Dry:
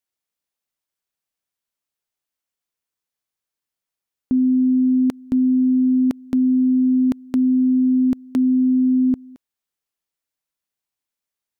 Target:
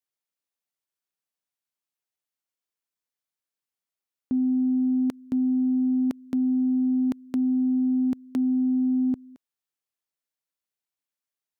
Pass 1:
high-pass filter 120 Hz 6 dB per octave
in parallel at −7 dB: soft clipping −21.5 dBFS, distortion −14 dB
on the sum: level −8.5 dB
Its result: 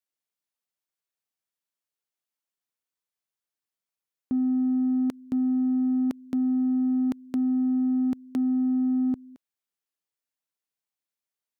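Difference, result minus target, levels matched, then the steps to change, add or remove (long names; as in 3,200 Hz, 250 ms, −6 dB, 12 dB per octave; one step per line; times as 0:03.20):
soft clipping: distortion +11 dB
change: soft clipping −13 dBFS, distortion −25 dB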